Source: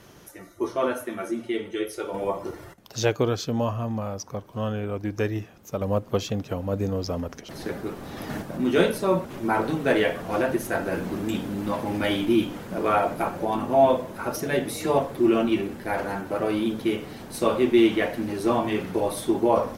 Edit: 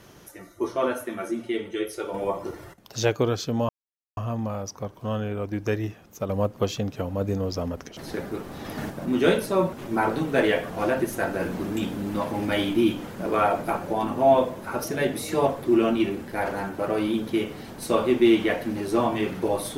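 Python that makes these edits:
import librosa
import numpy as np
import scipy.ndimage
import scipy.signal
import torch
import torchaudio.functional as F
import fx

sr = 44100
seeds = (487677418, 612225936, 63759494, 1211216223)

y = fx.edit(x, sr, fx.insert_silence(at_s=3.69, length_s=0.48), tone=tone)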